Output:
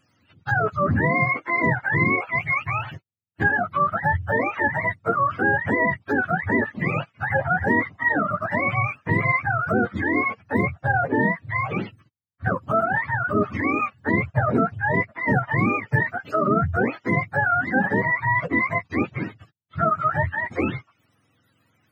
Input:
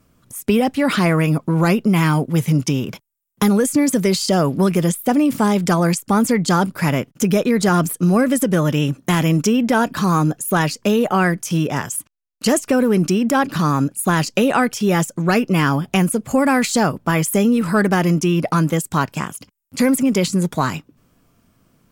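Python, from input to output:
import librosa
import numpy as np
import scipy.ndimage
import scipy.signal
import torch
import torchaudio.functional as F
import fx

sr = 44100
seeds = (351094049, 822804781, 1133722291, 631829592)

y = fx.octave_mirror(x, sr, pivot_hz=580.0)
y = y * librosa.db_to_amplitude(-3.0)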